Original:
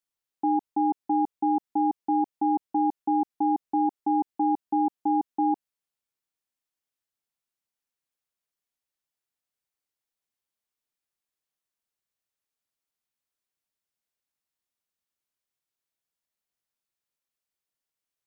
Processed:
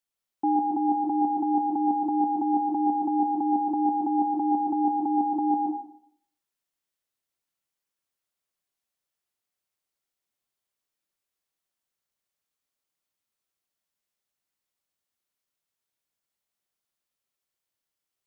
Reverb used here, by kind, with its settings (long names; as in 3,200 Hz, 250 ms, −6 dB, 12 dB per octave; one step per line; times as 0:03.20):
dense smooth reverb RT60 0.66 s, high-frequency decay 0.95×, pre-delay 110 ms, DRR 1 dB